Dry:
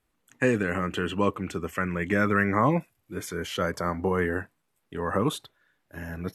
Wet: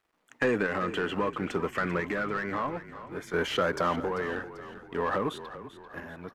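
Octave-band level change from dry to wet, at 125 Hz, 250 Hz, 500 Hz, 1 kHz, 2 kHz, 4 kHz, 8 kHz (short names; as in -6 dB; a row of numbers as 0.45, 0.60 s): -8.5, -5.5, -2.0, -2.0, -2.0, 0.0, -7.5 dB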